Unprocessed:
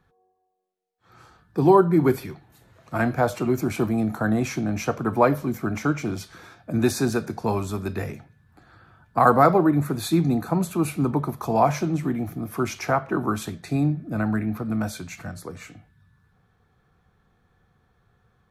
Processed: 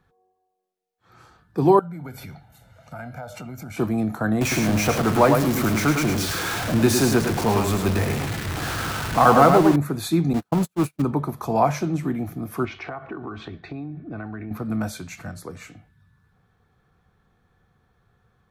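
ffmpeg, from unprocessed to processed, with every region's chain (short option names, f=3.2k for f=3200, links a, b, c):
-filter_complex "[0:a]asettb=1/sr,asplit=3[a][b][c];[a]atrim=end=1.794[d];[b]atrim=start=1.79:end=3.77,asetpts=PTS-STARTPTS,afade=t=in:d=0.004:c=qsin,afade=t=out:st=1.976:d=0.004:c=qsin,aecho=1:1:1.4:0.76,atrim=end_sample=87318,acompressor=threshold=-34dB:ratio=5:attack=3.2:release=140:knee=1:detection=peak[e];[c]atrim=start=3.766[f];[d][e]acrossfade=d=0.004:c1=hsin:c2=qsin[g];[g][f]acrossfade=d=0.004:c1=qsin:c2=hsin,asettb=1/sr,asplit=3[h][i][j];[h]atrim=end=4.414[k];[i]atrim=start=4.41:end=9.76,asetpts=PTS-STARTPTS,afade=t=in:d=0.004:c=qsin,afade=t=out:st=5.346:d=0.004:c=qsin,aeval=exprs='val(0)+0.5*0.075*sgn(val(0))':c=same,aecho=1:1:105:0.531,atrim=end_sample=235935[l];[j]atrim=start=9.756[m];[k][l]acrossfade=d=0.004:c1=hsin:c2=qsin[n];[n][m]acrossfade=d=0.004:c1=qsin:c2=hsin,asettb=1/sr,asplit=3[o][p][q];[o]atrim=end=10.334[r];[p]atrim=start=10.33:end=11.02,asetpts=PTS-STARTPTS,afade=t=in:d=0.004:c=qsin,afade=t=out:st=0.686:d=0.004:c=qsin,aeval=exprs='val(0)+0.5*0.0531*sgn(val(0))':c=same,agate=range=-50dB:threshold=-22dB:ratio=16:release=100:detection=peak[s];[q]atrim=start=11.016[t];[r][s]acrossfade=d=0.004:c1=hsin:c2=qsin[u];[u][t]acrossfade=d=0.004:c1=qsin:c2=hsin,asettb=1/sr,asplit=3[v][w][x];[v]atrim=end=12.654[y];[w]atrim=start=12.65:end=14.51,asetpts=PTS-STARTPTS,afade=t=in:d=0.004:c=qsin,afade=t=out:st=1.856:d=0.004:c=qsin,lowpass=f=3.6k:w=0.5412,lowpass=f=3.6k:w=1.3066,aecho=1:1:2.7:0.38,atrim=end_sample=82026,acompressor=threshold=-29dB:ratio=12:attack=3.2:release=140:knee=1:detection=peak[z];[x]atrim=start=14.506[aa];[y][z]acrossfade=d=0.004:c1=hsin:c2=qsin[ab];[ab][aa]acrossfade=d=0.004:c1=qsin:c2=hsin"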